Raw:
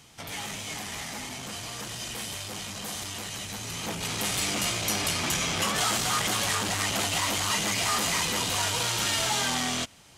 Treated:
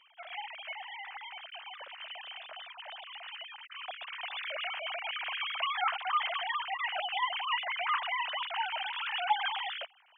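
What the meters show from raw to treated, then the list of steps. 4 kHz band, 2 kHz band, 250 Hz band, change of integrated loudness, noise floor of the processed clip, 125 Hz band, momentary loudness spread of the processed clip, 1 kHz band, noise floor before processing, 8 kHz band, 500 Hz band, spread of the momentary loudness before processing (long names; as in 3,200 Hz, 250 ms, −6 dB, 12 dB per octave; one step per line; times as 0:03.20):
−7.5 dB, −4.0 dB, below −40 dB, −7.5 dB, −61 dBFS, below −40 dB, 13 LU, −1.5 dB, −41 dBFS, below −40 dB, −9.5 dB, 10 LU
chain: three sine waves on the formant tracks
level −6.5 dB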